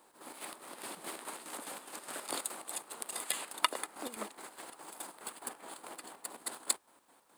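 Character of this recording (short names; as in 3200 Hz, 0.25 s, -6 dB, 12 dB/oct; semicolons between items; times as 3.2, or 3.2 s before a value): chopped level 4.8 Hz, depth 60%, duty 55%; a quantiser's noise floor 12-bit, dither none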